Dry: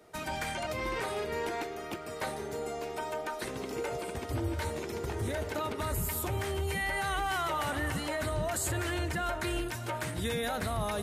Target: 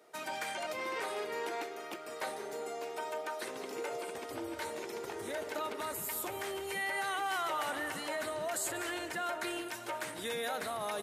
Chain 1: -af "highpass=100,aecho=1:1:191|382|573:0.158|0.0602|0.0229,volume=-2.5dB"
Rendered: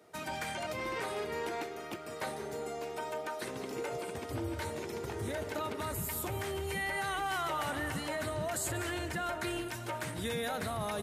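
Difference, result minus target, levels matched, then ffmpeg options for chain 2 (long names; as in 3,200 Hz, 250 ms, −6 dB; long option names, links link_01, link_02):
125 Hz band +15.0 dB
-af "highpass=340,aecho=1:1:191|382|573:0.158|0.0602|0.0229,volume=-2.5dB"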